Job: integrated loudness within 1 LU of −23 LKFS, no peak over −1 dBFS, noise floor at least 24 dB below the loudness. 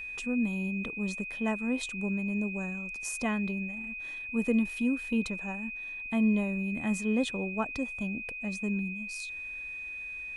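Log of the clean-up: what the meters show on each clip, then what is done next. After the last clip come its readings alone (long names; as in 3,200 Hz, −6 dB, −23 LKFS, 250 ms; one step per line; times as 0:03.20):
interfering tone 2,500 Hz; level of the tone −37 dBFS; integrated loudness −32.0 LKFS; sample peak −16.0 dBFS; target loudness −23.0 LKFS
→ notch filter 2,500 Hz, Q 30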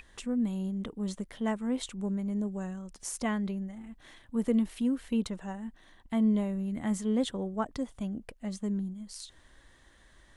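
interfering tone none found; integrated loudness −33.0 LKFS; sample peak −16.5 dBFS; target loudness −23.0 LKFS
→ level +10 dB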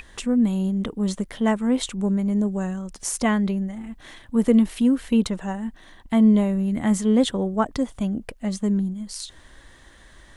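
integrated loudness −23.0 LKFS; sample peak −6.5 dBFS; background noise floor −50 dBFS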